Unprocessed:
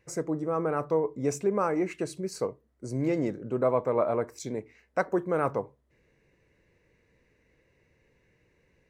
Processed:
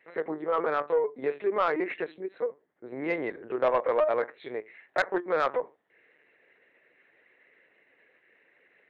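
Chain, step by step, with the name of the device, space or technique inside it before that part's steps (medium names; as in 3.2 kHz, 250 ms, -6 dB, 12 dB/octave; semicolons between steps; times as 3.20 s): 2.11–2.87 s: peaking EQ 3.2 kHz -6 dB 2.8 oct; talking toy (LPC vocoder at 8 kHz pitch kept; high-pass 460 Hz 12 dB/octave; peaking EQ 1.8 kHz +8 dB 0.52 oct; saturation -20 dBFS, distortion -16 dB); trim +4.5 dB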